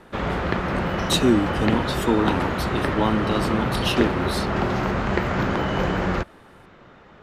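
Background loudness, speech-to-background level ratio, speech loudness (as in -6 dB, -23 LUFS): -24.5 LUFS, 0.0 dB, -24.5 LUFS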